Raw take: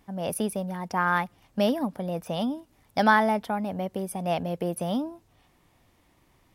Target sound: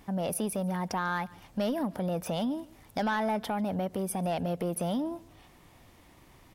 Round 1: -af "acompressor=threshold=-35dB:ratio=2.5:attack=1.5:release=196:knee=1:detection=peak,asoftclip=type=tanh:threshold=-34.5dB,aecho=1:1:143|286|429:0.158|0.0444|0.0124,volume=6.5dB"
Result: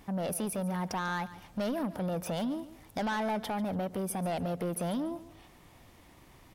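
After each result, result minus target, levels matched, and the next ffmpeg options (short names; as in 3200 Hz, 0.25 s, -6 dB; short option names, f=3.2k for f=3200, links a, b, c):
echo-to-direct +7 dB; soft clip: distortion +7 dB
-af "acompressor=threshold=-35dB:ratio=2.5:attack=1.5:release=196:knee=1:detection=peak,asoftclip=type=tanh:threshold=-34.5dB,aecho=1:1:143|286:0.0708|0.0198,volume=6.5dB"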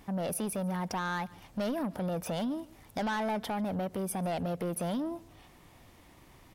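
soft clip: distortion +7 dB
-af "acompressor=threshold=-35dB:ratio=2.5:attack=1.5:release=196:knee=1:detection=peak,asoftclip=type=tanh:threshold=-28.5dB,aecho=1:1:143|286:0.0708|0.0198,volume=6.5dB"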